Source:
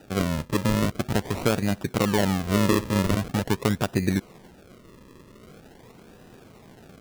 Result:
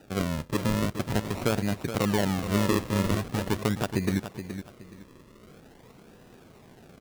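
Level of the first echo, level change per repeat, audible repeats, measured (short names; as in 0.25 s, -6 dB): -10.0 dB, -11.5 dB, 2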